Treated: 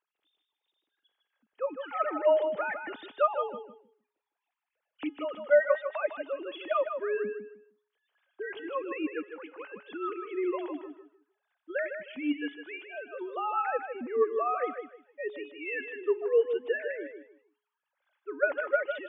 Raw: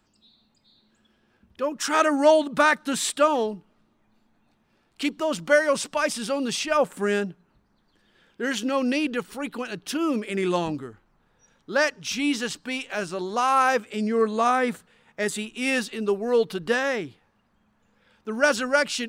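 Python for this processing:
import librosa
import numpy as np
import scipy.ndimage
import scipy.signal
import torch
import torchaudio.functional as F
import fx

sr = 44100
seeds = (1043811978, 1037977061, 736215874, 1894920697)

p1 = fx.sine_speech(x, sr)
p2 = fx.comb_fb(p1, sr, f0_hz=420.0, decay_s=0.53, harmonics='all', damping=0.0, mix_pct=60)
y = p2 + fx.echo_feedback(p2, sr, ms=155, feedback_pct=23, wet_db=-7.5, dry=0)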